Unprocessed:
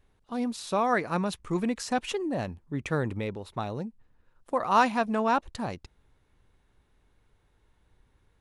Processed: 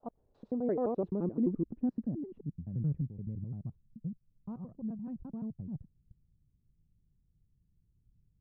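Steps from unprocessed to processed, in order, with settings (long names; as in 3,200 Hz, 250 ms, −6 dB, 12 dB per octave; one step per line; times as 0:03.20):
slices reordered back to front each 86 ms, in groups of 4
low-pass filter sweep 660 Hz → 160 Hz, 0:00.03–0:02.74
level −6 dB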